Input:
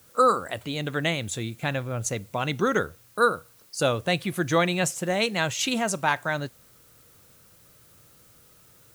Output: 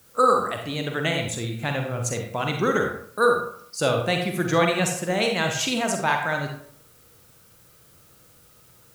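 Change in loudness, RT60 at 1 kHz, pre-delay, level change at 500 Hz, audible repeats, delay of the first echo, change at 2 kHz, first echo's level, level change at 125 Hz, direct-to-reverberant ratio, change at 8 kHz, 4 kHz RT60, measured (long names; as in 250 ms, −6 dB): +2.0 dB, 0.60 s, 39 ms, +2.5 dB, no echo audible, no echo audible, +2.0 dB, no echo audible, +2.0 dB, 2.5 dB, +1.0 dB, 0.40 s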